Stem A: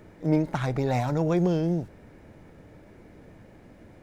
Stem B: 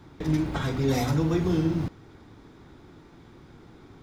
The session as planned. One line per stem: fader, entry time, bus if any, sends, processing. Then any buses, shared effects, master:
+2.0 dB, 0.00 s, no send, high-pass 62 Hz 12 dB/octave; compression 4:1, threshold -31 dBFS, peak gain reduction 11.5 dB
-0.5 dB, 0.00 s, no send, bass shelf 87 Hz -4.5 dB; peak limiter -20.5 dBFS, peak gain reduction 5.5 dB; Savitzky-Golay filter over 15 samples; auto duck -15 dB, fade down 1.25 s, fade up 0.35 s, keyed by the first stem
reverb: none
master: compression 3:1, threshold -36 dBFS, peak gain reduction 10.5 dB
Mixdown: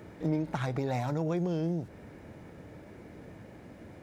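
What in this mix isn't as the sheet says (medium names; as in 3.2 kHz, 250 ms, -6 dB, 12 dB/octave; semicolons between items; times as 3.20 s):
stem B -0.5 dB -> -11.5 dB; master: missing compression 3:1, threshold -36 dBFS, peak gain reduction 10.5 dB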